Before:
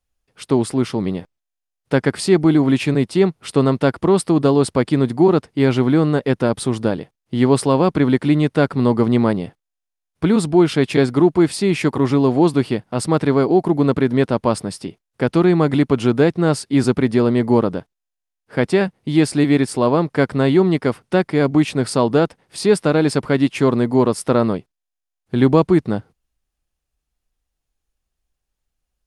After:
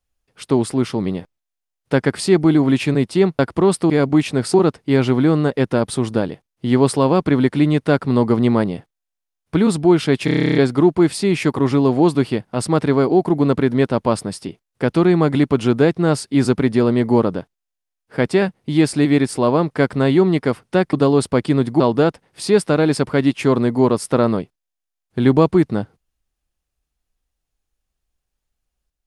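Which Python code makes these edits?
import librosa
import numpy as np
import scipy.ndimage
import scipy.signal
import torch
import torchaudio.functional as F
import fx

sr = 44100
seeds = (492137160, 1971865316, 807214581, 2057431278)

y = fx.edit(x, sr, fx.cut(start_s=3.39, length_s=0.46),
    fx.swap(start_s=4.36, length_s=0.87, other_s=21.32, other_length_s=0.64),
    fx.stutter(start_s=10.94, slice_s=0.03, count=11), tone=tone)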